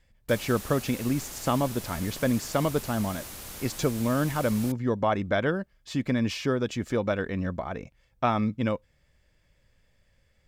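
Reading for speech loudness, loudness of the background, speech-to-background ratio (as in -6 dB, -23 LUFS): -28.5 LUFS, -39.5 LUFS, 11.0 dB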